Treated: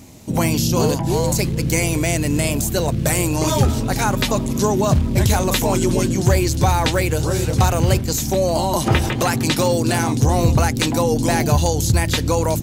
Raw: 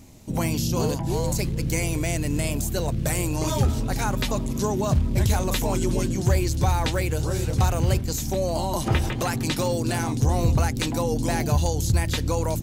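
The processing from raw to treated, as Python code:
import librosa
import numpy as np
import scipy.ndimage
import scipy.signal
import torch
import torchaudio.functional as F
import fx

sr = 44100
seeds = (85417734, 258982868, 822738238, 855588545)

y = fx.highpass(x, sr, hz=93.0, slope=6)
y = F.gain(torch.from_numpy(y), 7.5).numpy()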